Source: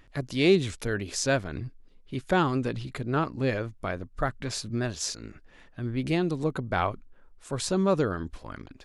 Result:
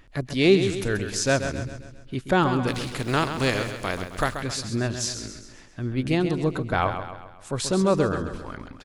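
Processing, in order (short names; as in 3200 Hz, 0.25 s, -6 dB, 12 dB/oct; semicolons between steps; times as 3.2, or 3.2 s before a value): 2.67–4.39 spectral contrast lowered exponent 0.59; on a send: feedback echo 0.133 s, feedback 49%, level -9 dB; on the sum: gain +3 dB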